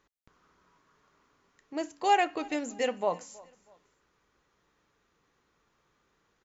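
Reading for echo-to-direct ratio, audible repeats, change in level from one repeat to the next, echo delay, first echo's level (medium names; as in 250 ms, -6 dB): -22.5 dB, 2, -9.0 dB, 321 ms, -23.0 dB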